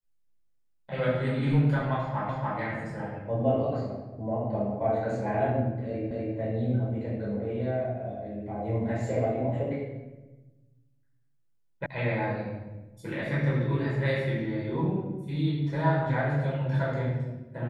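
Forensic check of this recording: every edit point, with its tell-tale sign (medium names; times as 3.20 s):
2.29 s: repeat of the last 0.29 s
6.11 s: repeat of the last 0.25 s
11.86 s: sound stops dead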